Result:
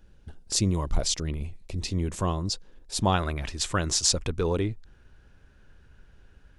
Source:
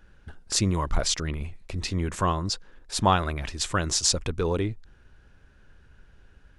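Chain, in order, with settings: peaking EQ 1.5 kHz -10 dB 1.5 oct, from 3.14 s -2 dB

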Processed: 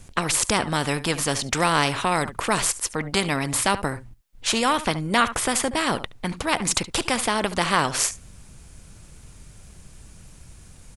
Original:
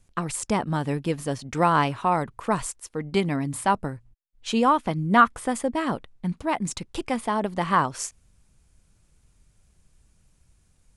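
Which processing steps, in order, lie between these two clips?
on a send: delay 71 ms -22 dB; on the sum: spectrum-flattening compressor 2:1

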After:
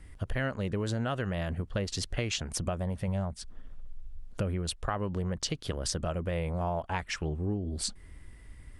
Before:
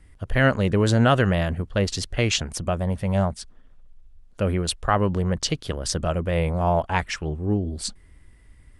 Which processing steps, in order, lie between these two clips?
3.08–4.73 s: bass shelf 180 Hz +5.5 dB; compression 5:1, threshold -32 dBFS, peak gain reduction 17 dB; trim +2 dB

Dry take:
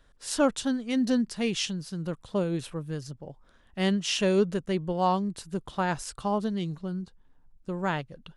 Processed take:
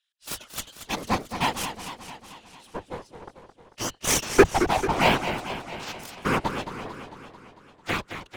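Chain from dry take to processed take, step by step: LFO high-pass square 0.57 Hz 400–2900 Hz; Chebyshev shaper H 3 -10 dB, 6 -12 dB, 7 -27 dB, 8 -22 dB, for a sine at -8.5 dBFS; in parallel at -8 dB: fuzz box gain 31 dB, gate -39 dBFS; on the sum: whisper effect; modulated delay 223 ms, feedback 62%, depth 173 cents, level -9.5 dB

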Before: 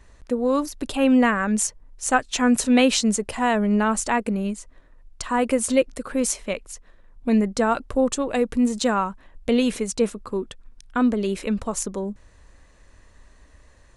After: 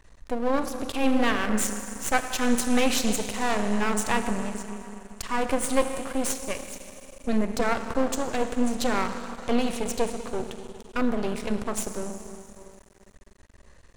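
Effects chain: Schroeder reverb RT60 2.9 s, combs from 26 ms, DRR 7 dB; half-wave rectifier

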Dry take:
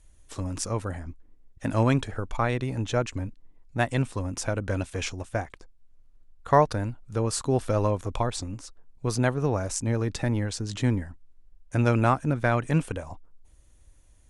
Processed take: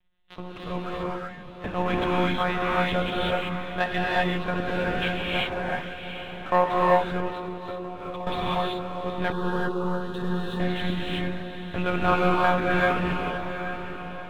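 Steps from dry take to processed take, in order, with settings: monotone LPC vocoder at 8 kHz 180 Hz; tilt EQ +2 dB/octave; waveshaping leveller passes 1; echo that smears into a reverb 805 ms, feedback 44%, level -9.5 dB; gated-style reverb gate 410 ms rising, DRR -5.5 dB; 7.30–8.27 s: compression 12:1, threshold -27 dBFS, peak gain reduction 14 dB; 9.32–10.60 s: static phaser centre 440 Hz, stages 8; trim -3.5 dB

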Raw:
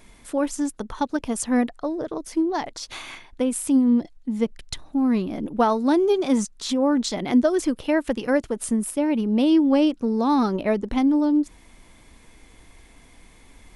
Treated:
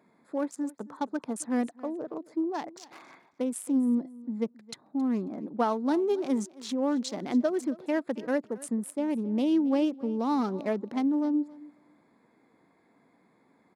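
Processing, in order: local Wiener filter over 15 samples; high-pass 160 Hz 24 dB/octave; feedback delay 271 ms, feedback 16%, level -20.5 dB; trim -7 dB

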